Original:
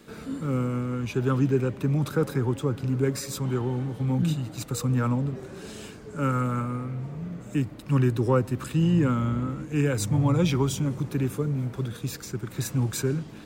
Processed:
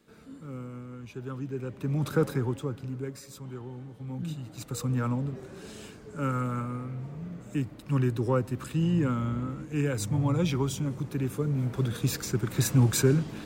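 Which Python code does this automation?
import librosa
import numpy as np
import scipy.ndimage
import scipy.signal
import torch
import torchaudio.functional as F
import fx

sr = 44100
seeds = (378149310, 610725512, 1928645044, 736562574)

y = fx.gain(x, sr, db=fx.line((1.47, -13.0), (2.17, 0.0), (3.19, -13.0), (4.0, -13.0), (4.8, -4.0), (11.2, -4.0), (12.03, 4.0)))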